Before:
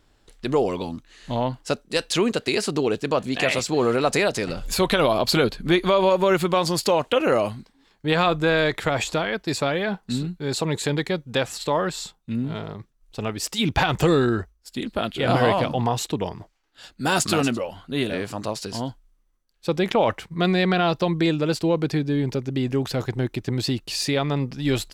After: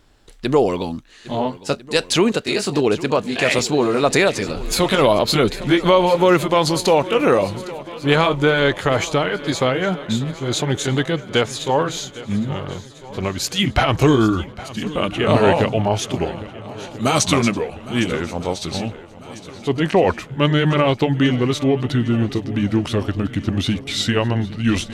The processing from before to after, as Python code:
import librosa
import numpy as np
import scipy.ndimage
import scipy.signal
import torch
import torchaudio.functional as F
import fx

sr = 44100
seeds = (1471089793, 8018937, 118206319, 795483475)

p1 = fx.pitch_glide(x, sr, semitones=-4.0, runs='starting unshifted')
p2 = p1 + fx.echo_swing(p1, sr, ms=1348, ratio=1.5, feedback_pct=48, wet_db=-17.5, dry=0)
y = p2 * 10.0 ** (5.5 / 20.0)